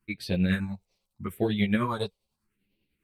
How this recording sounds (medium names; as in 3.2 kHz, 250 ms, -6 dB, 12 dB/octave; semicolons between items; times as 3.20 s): phasing stages 4, 0.81 Hz, lowest notch 250–1300 Hz; tremolo triangle 10 Hz, depth 55%; a shimmering, thickened sound